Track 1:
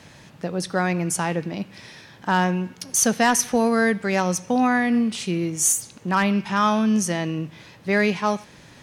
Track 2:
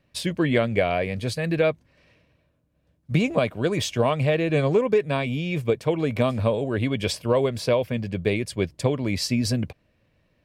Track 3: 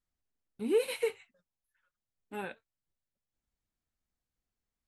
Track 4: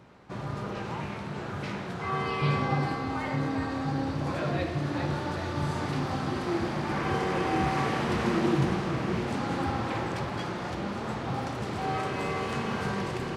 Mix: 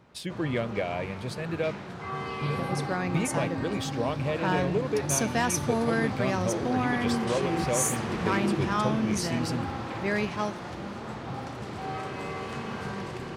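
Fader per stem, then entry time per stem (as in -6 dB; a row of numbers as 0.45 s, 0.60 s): -8.5 dB, -8.5 dB, -13.0 dB, -4.0 dB; 2.15 s, 0.00 s, 1.75 s, 0.00 s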